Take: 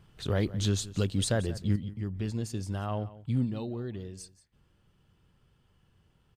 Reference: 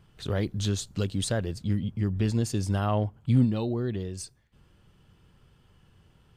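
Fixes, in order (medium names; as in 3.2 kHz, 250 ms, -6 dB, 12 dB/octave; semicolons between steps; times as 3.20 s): inverse comb 177 ms -17.5 dB; gain correction +7 dB, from 1.76 s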